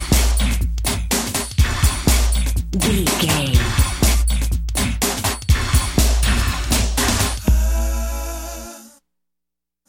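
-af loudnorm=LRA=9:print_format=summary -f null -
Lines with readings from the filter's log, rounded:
Input Integrated:    -19.0 LUFS
Input True Peak:      -2.8 dBTP
Input LRA:             4.6 LU
Input Threshold:     -29.5 LUFS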